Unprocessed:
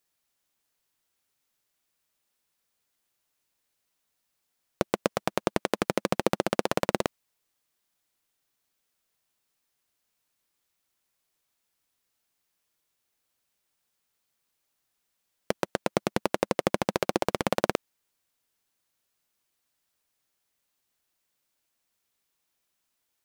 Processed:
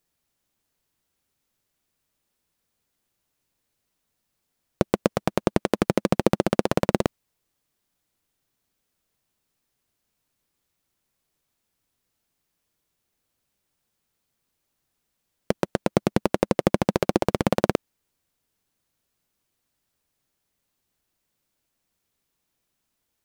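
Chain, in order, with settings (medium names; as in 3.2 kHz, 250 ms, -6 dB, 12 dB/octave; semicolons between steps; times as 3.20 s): bass shelf 410 Hz +10.5 dB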